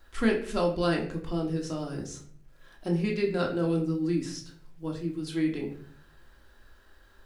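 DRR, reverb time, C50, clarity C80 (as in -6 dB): -0.5 dB, 0.55 s, 8.5 dB, 12.5 dB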